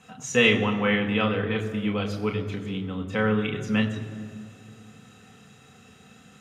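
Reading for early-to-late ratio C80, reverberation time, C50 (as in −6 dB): 10.5 dB, 2.1 s, 9.5 dB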